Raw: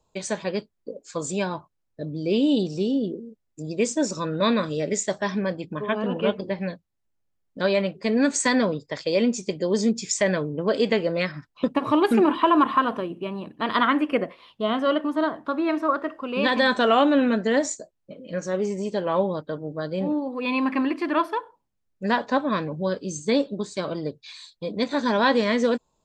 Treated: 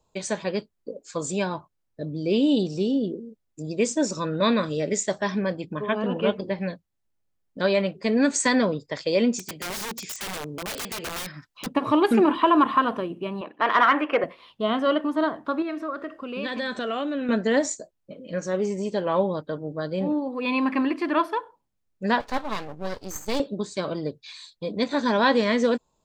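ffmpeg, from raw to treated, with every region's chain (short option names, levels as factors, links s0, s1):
-filter_complex "[0:a]asettb=1/sr,asplit=3[s0][s1][s2];[s0]atrim=end=9.394[s3];[s1]atrim=start=9.39:end=11.67,asetpts=PTS-STARTPTS,afade=t=in:d=0.004:c=qsin,afade=t=out:st=2.276:d=0.004:c=qsin,tiltshelf=f=1100:g=-5,acrossover=split=500|2700[s4][s5][s6];[s4]acompressor=threshold=0.0316:ratio=4[s7];[s5]acompressor=threshold=0.0224:ratio=4[s8];[s6]acompressor=threshold=0.0178:ratio=4[s9];[s7][s8][s9]amix=inputs=3:normalize=0,aeval=exprs='(mod(22.4*val(0)+1,2)-1)/22.4':c=same[s10];[s2]atrim=start=11.666[s11];[s3][s10]acrossfade=d=0.004:c1=hsin:c2=qsin[s12];[s12][s11]acrossfade=d=0.004:c1=qsin:c2=hsin,asettb=1/sr,asplit=3[s13][s14][s15];[s13]atrim=end=13.414[s16];[s14]atrim=start=13.41:end=14.24,asetpts=PTS-STARTPTS,afade=t=in:d=0.004:c=qsin,afade=t=out:st=0.826:d=0.004:c=qsin,asplit=2[s17][s18];[s18]highpass=f=720:p=1,volume=5.62,asoftclip=type=tanh:threshold=0.376[s19];[s17][s19]amix=inputs=2:normalize=0,lowpass=f=3300:p=1,volume=0.501,bass=f=250:g=-15,treble=f=4000:g=-15[s20];[s15]atrim=start=14.236[s21];[s16][s20]acrossfade=d=0.004:c1=hsin:c2=qsin[s22];[s22][s21]acrossfade=d=0.004:c1=qsin:c2=hsin,asettb=1/sr,asplit=3[s23][s24][s25];[s23]atrim=end=15.624[s26];[s24]atrim=start=15.62:end=17.29,asetpts=PTS-STARTPTS,afade=t=in:d=0.004:c=qsin,afade=t=out:st=1.666:d=0.004:c=qsin,equalizer=f=910:w=3.7:g=-9,acompressor=threshold=0.0251:ratio=2:attack=3.2:release=140:knee=1:detection=peak[s27];[s25]atrim=start=17.286[s28];[s26][s27]acrossfade=d=0.004:c1=hsin:c2=qsin[s29];[s29][s28]acrossfade=d=0.004:c1=qsin:c2=hsin,asettb=1/sr,asplit=3[s30][s31][s32];[s30]atrim=end=22.204[s33];[s31]atrim=start=22.2:end=23.4,asetpts=PTS-STARTPTS,afade=t=in:d=0.004:c=qsin,afade=t=out:st=1.196:d=0.004:c=qsin,highpass=f=300:p=1,highshelf=f=3300:g=5.5,aeval=exprs='max(val(0),0)':c=same[s34];[s32]atrim=start=23.396[s35];[s33][s34]acrossfade=d=0.004:c1=hsin:c2=qsin[s36];[s36][s35]acrossfade=d=0.004:c1=qsin:c2=hsin"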